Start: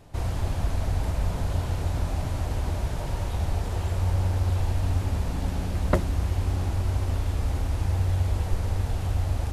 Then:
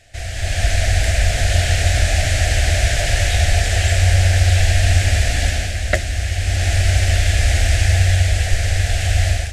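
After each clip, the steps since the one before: EQ curve 100 Hz 0 dB, 170 Hz -11 dB, 440 Hz -7 dB, 700 Hz +6 dB, 1000 Hz -22 dB, 1700 Hz +14 dB, 4000 Hz +10 dB, 7900 Hz +13 dB, 13000 Hz -1 dB; AGC gain up to 14 dB; gain -1 dB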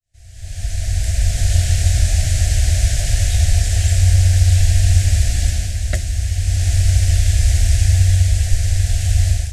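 opening faded in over 1.48 s; tone controls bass +13 dB, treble +13 dB; gain -11 dB

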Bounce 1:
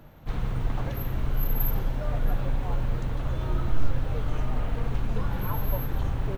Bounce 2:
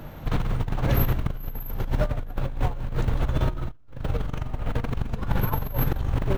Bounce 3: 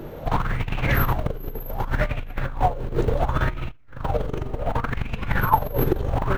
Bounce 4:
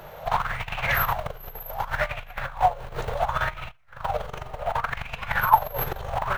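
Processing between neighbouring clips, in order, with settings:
negative-ratio compressor -29 dBFS, ratio -0.5; gain +5 dB
LFO bell 0.68 Hz 380–2600 Hz +16 dB
EQ curve 170 Hz 0 dB, 290 Hz -14 dB, 670 Hz +12 dB; gain -10 dB

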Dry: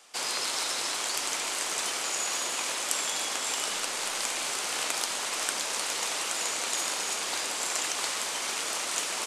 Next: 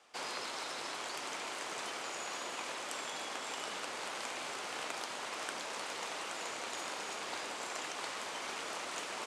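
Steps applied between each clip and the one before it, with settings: LPF 1900 Hz 6 dB/oct; vocal rider; HPF 41 Hz; gain -4.5 dB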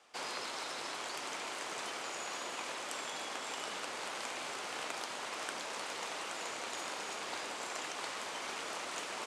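nothing audible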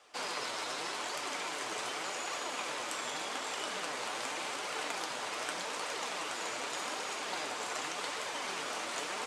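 flange 0.85 Hz, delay 1.4 ms, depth 8.3 ms, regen +43%; on a send at -9 dB: reverb RT60 0.35 s, pre-delay 7 ms; on the sum: gain +6.5 dB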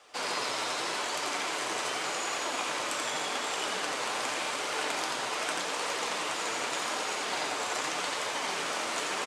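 echo 86 ms -4 dB; gain +4 dB

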